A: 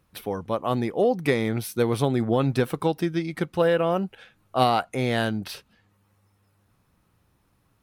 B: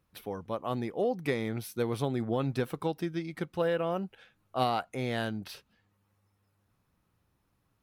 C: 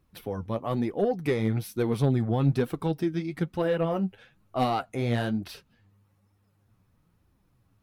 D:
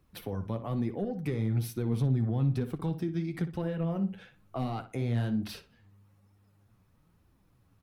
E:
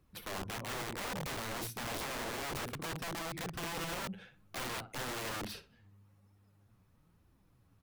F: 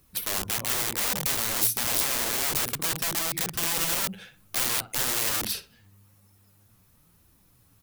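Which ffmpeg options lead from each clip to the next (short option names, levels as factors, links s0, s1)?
-af "equalizer=f=8900:w=5.4:g=-3.5,volume=0.398"
-af "flanger=delay=2.5:depth=8.4:regen=41:speed=1.1:shape=triangular,asoftclip=type=tanh:threshold=0.0708,lowshelf=f=290:g=8.5,volume=1.88"
-filter_complex "[0:a]acrossover=split=230[s0][s1];[s1]acompressor=threshold=0.0141:ratio=6[s2];[s0][s2]amix=inputs=2:normalize=0,asplit=2[s3][s4];[s4]alimiter=limit=0.0668:level=0:latency=1,volume=1.33[s5];[s3][s5]amix=inputs=2:normalize=0,asplit=2[s6][s7];[s7]adelay=60,lowpass=f=3100:p=1,volume=0.282,asplit=2[s8][s9];[s9]adelay=60,lowpass=f=3100:p=1,volume=0.3,asplit=2[s10][s11];[s11]adelay=60,lowpass=f=3100:p=1,volume=0.3[s12];[s6][s8][s10][s12]amix=inputs=4:normalize=0,volume=0.473"
-af "aeval=exprs='(mod(42.2*val(0)+1,2)-1)/42.2':c=same,volume=0.794"
-af "crystalizer=i=4:c=0,volume=1.68"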